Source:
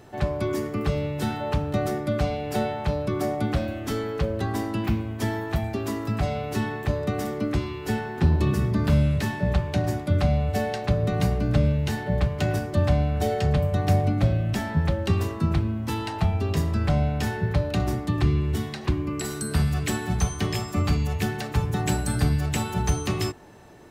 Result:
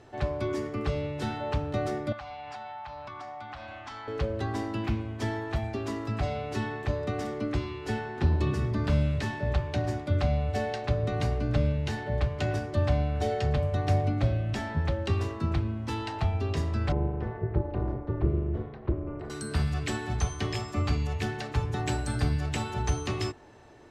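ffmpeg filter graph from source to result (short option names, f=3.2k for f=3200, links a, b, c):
-filter_complex "[0:a]asettb=1/sr,asplit=3[a][b][c];[a]atrim=end=2.124[d];[b]atrim=start=2.12:end=4.08,asetpts=PTS-STARTPTS,afade=t=in:d=0.004:c=qsin,afade=t=out:st=1.956:d=0.004:c=qsin,lowpass=5.4k,lowshelf=f=610:t=q:w=3:g=-11.5,acompressor=threshold=-33dB:ratio=10:attack=3.2:release=140:knee=1:detection=peak[e];[c]atrim=start=4.076[f];[d][e]acrossfade=d=0.004:c1=hsin:c2=qsin[g];[g][f]acrossfade=d=0.004:c1=qsin:c2=hsin,asettb=1/sr,asplit=3[h][i][j];[h]atrim=end=16.924[k];[i]atrim=start=16.92:end=19.3,asetpts=PTS-STARTPTS,afade=t=in:d=0.004:c=qsin,afade=t=out:st=2.376:d=0.004:c=qsin,lowpass=1.2k,lowshelf=f=72:g=10,tremolo=f=270:d=0.889[l];[j]atrim=start=19.296[m];[k][l]acrossfade=d=0.004:c1=hsin:c2=qsin[n];[n][m]acrossfade=d=0.004:c1=qsin:c2=hsin,lowpass=6.6k,equalizer=f=180:t=o:w=0.31:g=-12.5,volume=-3.5dB"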